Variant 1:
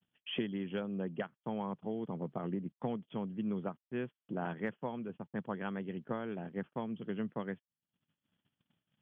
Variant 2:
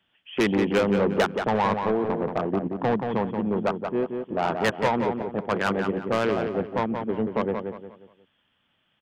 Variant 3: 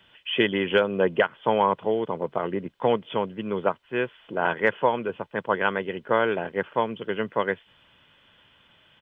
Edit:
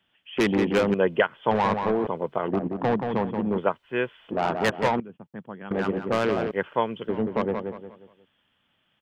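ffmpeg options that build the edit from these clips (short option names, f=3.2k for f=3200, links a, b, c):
-filter_complex "[2:a]asplit=4[a][b][c][d];[1:a]asplit=6[e][f][g][h][i][j];[e]atrim=end=0.942[k];[a]atrim=start=0.938:end=1.512[l];[f]atrim=start=1.508:end=2.072[m];[b]atrim=start=2.068:end=2.482[n];[g]atrim=start=2.478:end=3.582[o];[c]atrim=start=3.578:end=4.312[p];[h]atrim=start=4.308:end=5.002[q];[0:a]atrim=start=4.998:end=5.712[r];[i]atrim=start=5.708:end=6.512[s];[d]atrim=start=6.508:end=7.092[t];[j]atrim=start=7.088[u];[k][l]acrossfade=d=0.004:c1=hsin:c2=hsin[v];[v][m]acrossfade=d=0.004:c1=hsin:c2=hsin[w];[w][n]acrossfade=d=0.004:c1=hsin:c2=hsin[x];[x][o]acrossfade=d=0.004:c1=hsin:c2=hsin[y];[y][p]acrossfade=d=0.004:c1=hsin:c2=hsin[z];[z][q]acrossfade=d=0.004:c1=hsin:c2=hsin[aa];[aa][r]acrossfade=d=0.004:c1=hsin:c2=hsin[ab];[ab][s]acrossfade=d=0.004:c1=hsin:c2=hsin[ac];[ac][t]acrossfade=d=0.004:c1=hsin:c2=hsin[ad];[ad][u]acrossfade=d=0.004:c1=hsin:c2=hsin"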